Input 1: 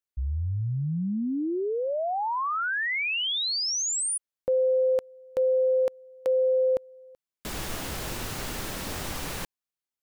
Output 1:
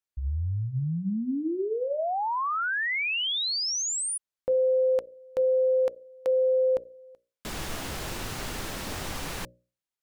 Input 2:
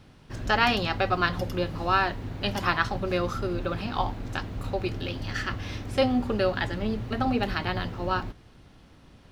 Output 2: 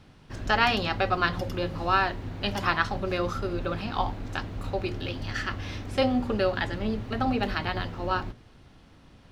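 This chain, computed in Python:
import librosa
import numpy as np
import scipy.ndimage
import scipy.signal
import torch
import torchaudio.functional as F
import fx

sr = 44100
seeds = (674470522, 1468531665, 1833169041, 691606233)

y = fx.high_shelf(x, sr, hz=11000.0, db=-6.0)
y = fx.hum_notches(y, sr, base_hz=60, count=10)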